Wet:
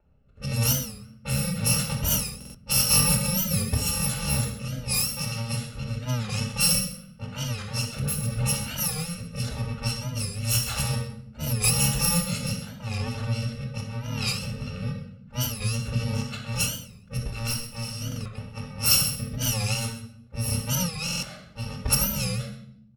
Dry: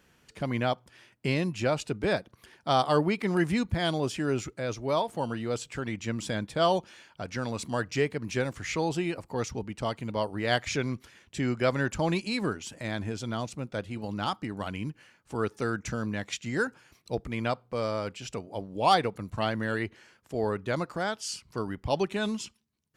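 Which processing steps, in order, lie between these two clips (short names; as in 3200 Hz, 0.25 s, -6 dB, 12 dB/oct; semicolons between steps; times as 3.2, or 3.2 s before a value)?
FFT order left unsorted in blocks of 128 samples; low-pass opened by the level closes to 990 Hz, open at -23 dBFS; rotary speaker horn 0.9 Hz; 7.99–8.63 dispersion highs, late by 86 ms, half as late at 680 Hz; 10.31–10.9 bell 320 Hz -12.5 dB 0.86 oct; 17.28–18.02 tube stage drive 25 dB, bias 0.7; echo 0.129 s -14.5 dB; reverb, pre-delay 3 ms, DRR -1 dB; stuck buffer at 2.36/18.08/21.04, samples 2048, times 3; record warp 45 rpm, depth 160 cents; gain +3 dB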